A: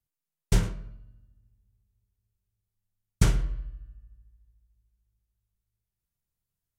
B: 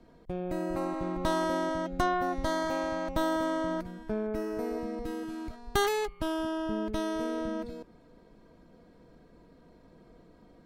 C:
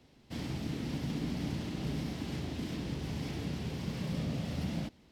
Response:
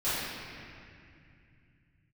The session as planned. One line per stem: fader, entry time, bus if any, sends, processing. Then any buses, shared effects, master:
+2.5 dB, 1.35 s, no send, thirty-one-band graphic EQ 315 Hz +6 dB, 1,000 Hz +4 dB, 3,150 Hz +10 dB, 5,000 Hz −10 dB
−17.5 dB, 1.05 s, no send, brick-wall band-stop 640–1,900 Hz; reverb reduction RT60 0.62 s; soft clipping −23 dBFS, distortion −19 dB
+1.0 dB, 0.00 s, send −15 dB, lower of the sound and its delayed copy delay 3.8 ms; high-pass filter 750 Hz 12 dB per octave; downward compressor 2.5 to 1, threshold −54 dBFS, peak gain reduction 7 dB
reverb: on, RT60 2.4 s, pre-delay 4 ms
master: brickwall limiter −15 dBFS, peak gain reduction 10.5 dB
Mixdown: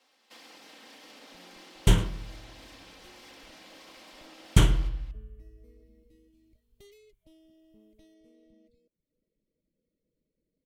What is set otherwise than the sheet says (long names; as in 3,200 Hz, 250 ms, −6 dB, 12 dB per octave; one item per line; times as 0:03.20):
stem B −17.5 dB → −24.0 dB
master: missing brickwall limiter −15 dBFS, peak gain reduction 10.5 dB